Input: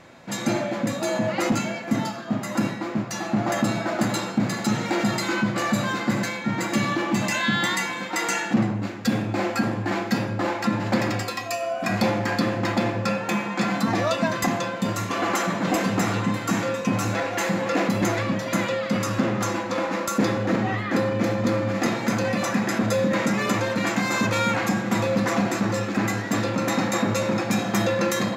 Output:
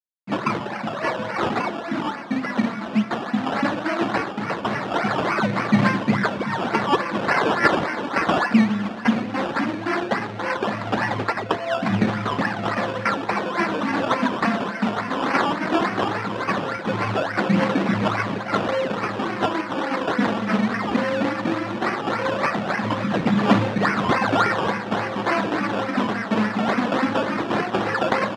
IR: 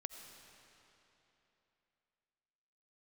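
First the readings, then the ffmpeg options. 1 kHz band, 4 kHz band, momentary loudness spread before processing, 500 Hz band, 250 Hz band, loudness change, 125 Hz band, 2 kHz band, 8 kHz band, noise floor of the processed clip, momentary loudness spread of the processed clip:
+4.5 dB, −0.5 dB, 4 LU, +1.0 dB, +1.0 dB, +1.5 dB, −1.5 dB, +2.5 dB, −12.0 dB, −31 dBFS, 6 LU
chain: -af "afftfilt=real='re*gte(hypot(re,im),0.02)':imag='im*gte(hypot(re,im),0.02)':win_size=1024:overlap=0.75,equalizer=frequency=490:width=0.51:gain=-14,bandreject=frequency=60:width_type=h:width=6,bandreject=frequency=120:width_type=h:width=6,bandreject=frequency=180:width_type=h:width=6,bandreject=frequency=240:width_type=h:width=6,bandreject=frequency=300:width_type=h:width=6,bandreject=frequency=360:width_type=h:width=6,acontrast=59,acrusher=bits=7:mix=0:aa=0.000001,aphaser=in_gain=1:out_gain=1:delay=4.7:decay=0.74:speed=0.17:type=triangular,acrusher=samples=17:mix=1:aa=0.000001:lfo=1:lforange=10.2:lforate=3.5,highpass=190,lowpass=3000,aecho=1:1:571|1142|1713|2284|2855:0.141|0.0777|0.0427|0.0235|0.0129,volume=1.5dB"

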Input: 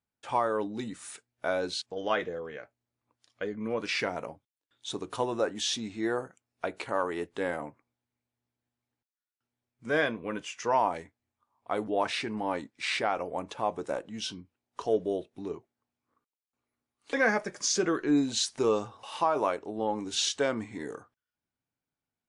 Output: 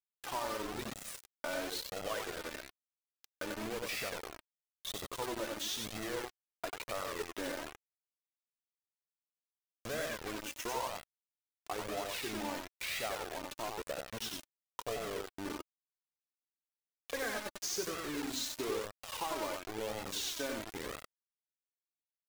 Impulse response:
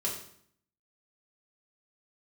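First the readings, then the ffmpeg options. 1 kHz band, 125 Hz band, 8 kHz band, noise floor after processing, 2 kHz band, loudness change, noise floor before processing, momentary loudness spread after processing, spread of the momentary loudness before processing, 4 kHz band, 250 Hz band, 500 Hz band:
−10.0 dB, −7.5 dB, −5.0 dB, below −85 dBFS, −7.5 dB, −8.5 dB, below −85 dBFS, 9 LU, 13 LU, −5.5 dB, −11.0 dB, −10.0 dB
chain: -af "acompressor=threshold=-46dB:ratio=2.5,adynamicequalizer=threshold=0.00224:dfrequency=710:dqfactor=1.6:tfrequency=710:tqfactor=1.6:attack=5:release=100:ratio=0.375:range=1.5:mode=cutabove:tftype=bell,aecho=1:1:93|186|279:0.631|0.151|0.0363,acrusher=bits=6:mix=0:aa=0.000001,flanger=delay=1.5:depth=1.9:regen=29:speed=1:shape=sinusoidal,volume=6dB"

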